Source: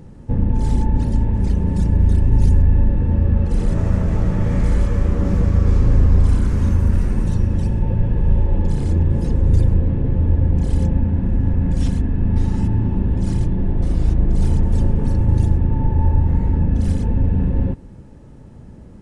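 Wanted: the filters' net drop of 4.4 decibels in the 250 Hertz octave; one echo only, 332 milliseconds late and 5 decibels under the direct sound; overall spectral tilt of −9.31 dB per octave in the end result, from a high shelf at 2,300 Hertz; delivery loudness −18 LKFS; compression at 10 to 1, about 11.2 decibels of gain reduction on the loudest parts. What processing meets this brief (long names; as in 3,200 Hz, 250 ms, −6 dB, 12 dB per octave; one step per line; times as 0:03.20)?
parametric band 250 Hz −6.5 dB
high-shelf EQ 2,300 Hz +3.5 dB
downward compressor 10 to 1, threshold −20 dBFS
single-tap delay 332 ms −5 dB
level +8.5 dB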